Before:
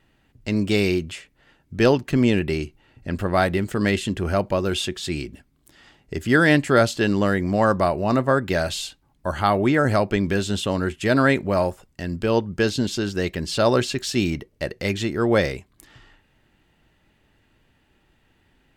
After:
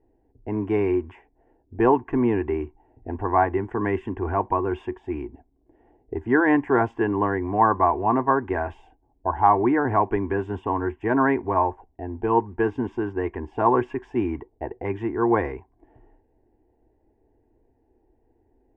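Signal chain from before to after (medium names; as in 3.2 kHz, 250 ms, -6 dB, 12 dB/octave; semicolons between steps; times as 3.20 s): modulation noise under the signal 30 dB; static phaser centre 850 Hz, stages 8; touch-sensitive low-pass 550–1100 Hz up, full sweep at -25 dBFS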